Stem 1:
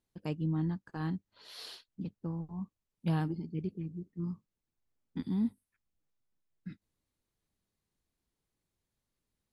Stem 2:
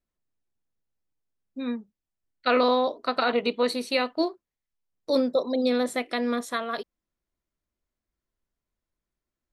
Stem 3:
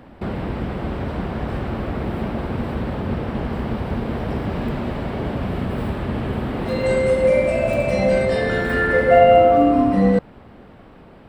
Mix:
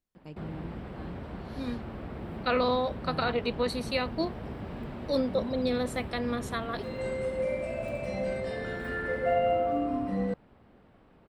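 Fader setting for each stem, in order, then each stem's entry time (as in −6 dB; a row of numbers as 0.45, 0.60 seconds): −9.5, −5.0, −14.5 decibels; 0.00, 0.00, 0.15 seconds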